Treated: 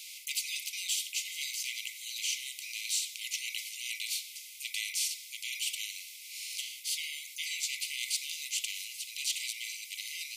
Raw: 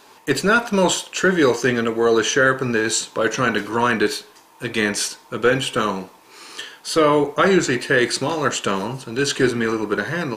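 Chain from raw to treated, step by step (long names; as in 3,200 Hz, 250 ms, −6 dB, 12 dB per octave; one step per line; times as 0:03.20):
linear-phase brick-wall high-pass 2,000 Hz
every bin compressed towards the loudest bin 2 to 1
level −8.5 dB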